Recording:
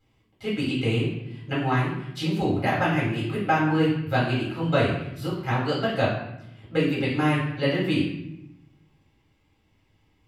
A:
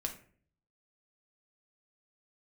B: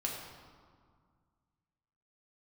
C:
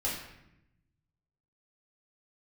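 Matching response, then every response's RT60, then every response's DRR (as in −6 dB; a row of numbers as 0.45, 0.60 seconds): C; 0.50, 1.9, 0.85 seconds; 2.0, −2.0, −7.5 decibels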